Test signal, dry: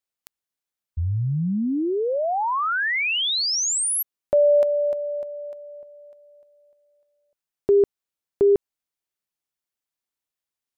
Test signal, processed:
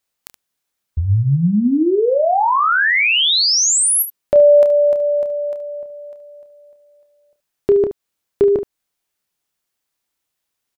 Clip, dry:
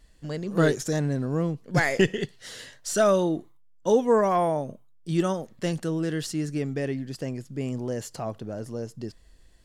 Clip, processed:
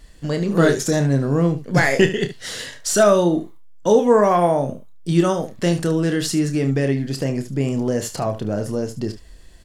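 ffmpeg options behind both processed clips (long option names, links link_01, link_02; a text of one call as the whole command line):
ffmpeg -i in.wav -filter_complex "[0:a]asplit=2[link_01][link_02];[link_02]acompressor=threshold=-27dB:ratio=6:attack=1:release=255:knee=1:detection=rms,volume=2.5dB[link_03];[link_01][link_03]amix=inputs=2:normalize=0,aecho=1:1:29|73:0.376|0.224,volume=3dB" out.wav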